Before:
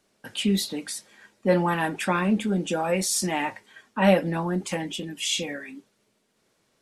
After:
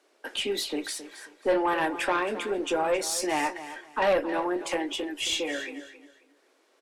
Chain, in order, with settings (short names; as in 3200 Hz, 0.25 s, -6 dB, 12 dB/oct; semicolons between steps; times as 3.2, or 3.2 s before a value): steep high-pass 290 Hz 48 dB/oct; high shelf 4100 Hz -8.5 dB; in parallel at +1 dB: compressor, threshold -36 dBFS, peak gain reduction 18.5 dB; on the sum: tube stage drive 17 dB, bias 0.3; feedback echo 0.269 s, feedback 25%, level -13.5 dB